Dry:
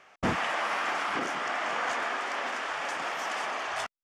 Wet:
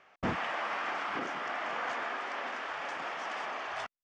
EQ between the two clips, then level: air absorption 110 m; -4.0 dB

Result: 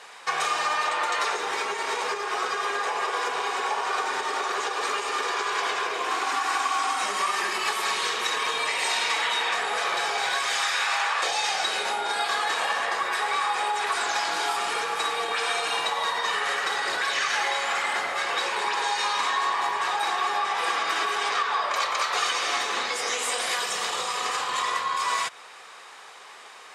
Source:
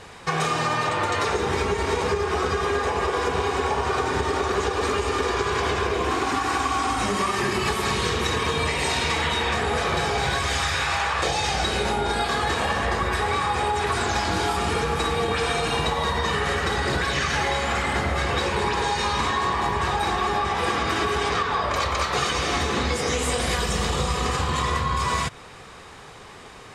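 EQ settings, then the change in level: HPF 730 Hz 12 dB/oct; 0.0 dB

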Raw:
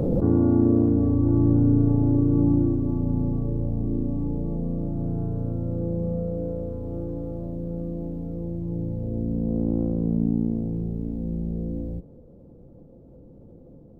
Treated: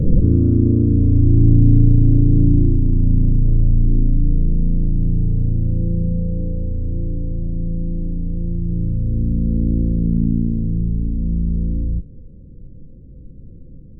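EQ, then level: Butterworth band-stop 840 Hz, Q 1.2; tone controls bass +5 dB, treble +11 dB; tilt -4 dB/oct; -8.0 dB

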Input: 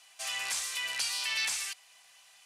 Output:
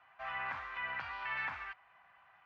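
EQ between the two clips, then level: LPF 1500 Hz 24 dB/oct; bell 460 Hz -11 dB 1.4 oct; +8.5 dB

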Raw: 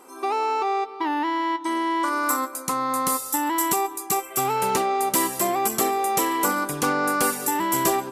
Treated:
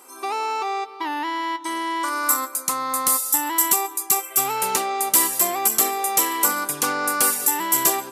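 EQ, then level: tilt +2.5 dB/oct; -1.0 dB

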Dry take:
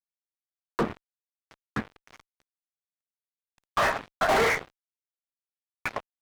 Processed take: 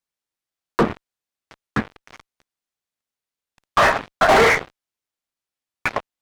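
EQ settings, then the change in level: high shelf 10000 Hz -7.5 dB; +9.0 dB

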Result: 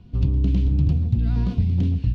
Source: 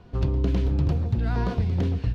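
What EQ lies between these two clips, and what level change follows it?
band shelf 850 Hz -13.5 dB 2.7 oct; high shelf 3100 Hz -10 dB; +4.0 dB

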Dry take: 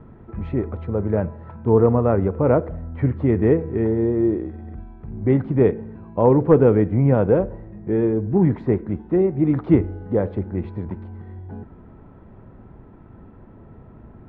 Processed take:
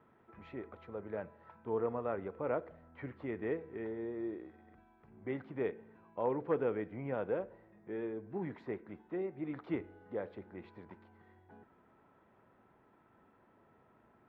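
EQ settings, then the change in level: LPF 1400 Hz 6 dB/oct; differentiator; dynamic EQ 1000 Hz, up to -3 dB, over -59 dBFS, Q 1.3; +6.5 dB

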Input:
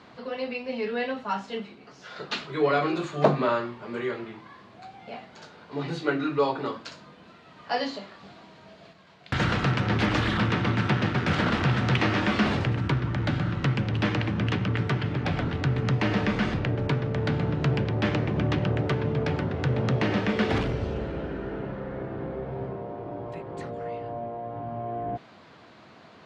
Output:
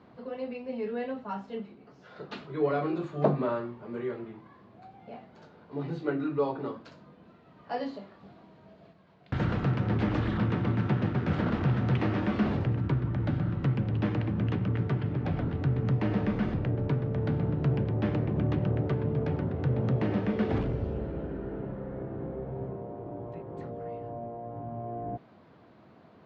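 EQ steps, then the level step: air absorption 61 m; tilt shelf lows +6.5 dB, about 1100 Hz; -8.0 dB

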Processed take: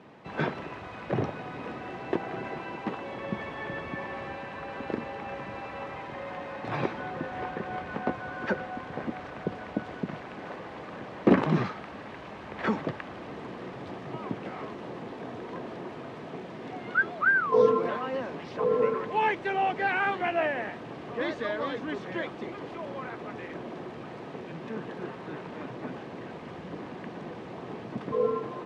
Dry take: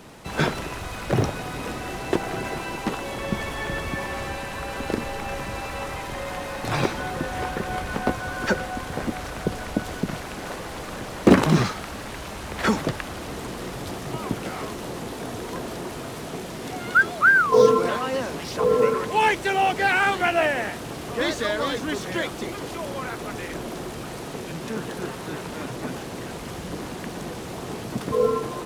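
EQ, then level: BPF 130–2400 Hz; notch 1400 Hz, Q 15; -5.5 dB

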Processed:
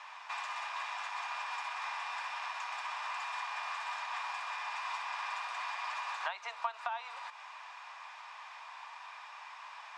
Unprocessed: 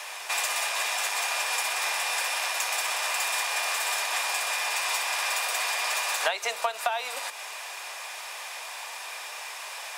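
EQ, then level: band-pass 1000 Hz, Q 3; air absorption 140 m; differentiator; +14.0 dB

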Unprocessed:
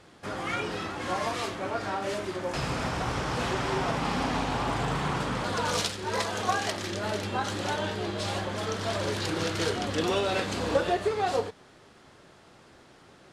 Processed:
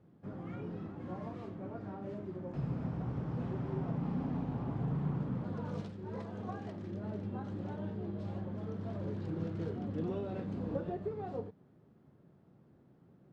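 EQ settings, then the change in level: band-pass 160 Hz, Q 1.5; 0.0 dB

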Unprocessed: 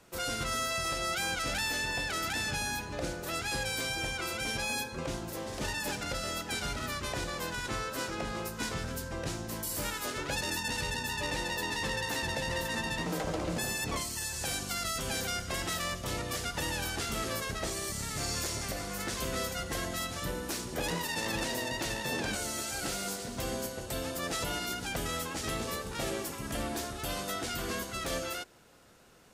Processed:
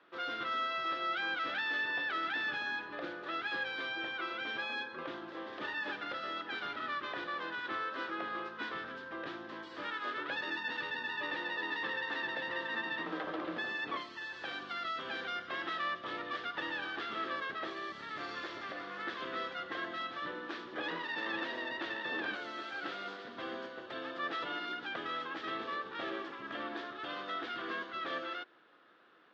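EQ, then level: air absorption 94 m; speaker cabinet 310–4000 Hz, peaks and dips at 320 Hz +8 dB, 1200 Hz +10 dB, 1700 Hz +9 dB, 3400 Hz +7 dB; -6.5 dB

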